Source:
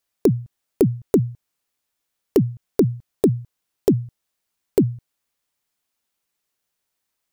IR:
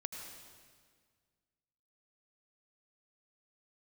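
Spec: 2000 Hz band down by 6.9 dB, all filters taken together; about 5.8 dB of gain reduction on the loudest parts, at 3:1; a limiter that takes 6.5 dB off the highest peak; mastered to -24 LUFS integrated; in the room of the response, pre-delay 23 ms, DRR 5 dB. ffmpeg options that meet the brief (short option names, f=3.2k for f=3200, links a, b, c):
-filter_complex "[0:a]equalizer=f=2k:t=o:g=-9,acompressor=threshold=-19dB:ratio=3,alimiter=limit=-12dB:level=0:latency=1,asplit=2[a][b];[1:a]atrim=start_sample=2205,adelay=23[c];[b][c]afir=irnorm=-1:irlink=0,volume=-4dB[d];[a][d]amix=inputs=2:normalize=0,volume=5.5dB"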